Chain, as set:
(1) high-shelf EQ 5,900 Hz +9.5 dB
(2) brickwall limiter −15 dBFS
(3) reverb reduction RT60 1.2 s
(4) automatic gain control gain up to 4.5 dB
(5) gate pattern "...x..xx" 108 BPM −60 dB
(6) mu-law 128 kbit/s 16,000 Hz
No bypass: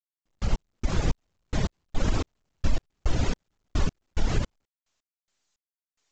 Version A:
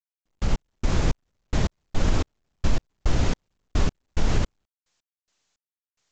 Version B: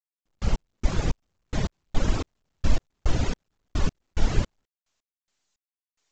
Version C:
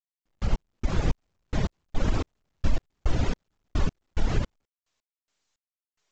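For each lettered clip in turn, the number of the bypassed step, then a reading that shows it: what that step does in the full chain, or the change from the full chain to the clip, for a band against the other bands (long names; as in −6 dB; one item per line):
3, change in integrated loudness +3.0 LU
2, change in crest factor +3.5 dB
1, 4 kHz band −2.5 dB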